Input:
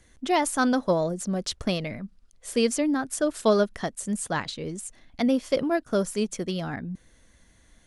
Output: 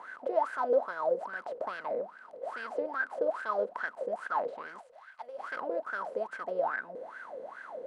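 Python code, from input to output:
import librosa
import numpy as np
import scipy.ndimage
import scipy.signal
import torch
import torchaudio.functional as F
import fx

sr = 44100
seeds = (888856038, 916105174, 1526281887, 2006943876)

y = fx.bin_compress(x, sr, power=0.4)
y = fx.wah_lfo(y, sr, hz=2.4, low_hz=480.0, high_hz=1600.0, q=16.0)
y = fx.tone_stack(y, sr, knobs='10-0-10', at=(4.8, 5.38), fade=0.02)
y = F.gain(torch.from_numpy(y), 3.5).numpy()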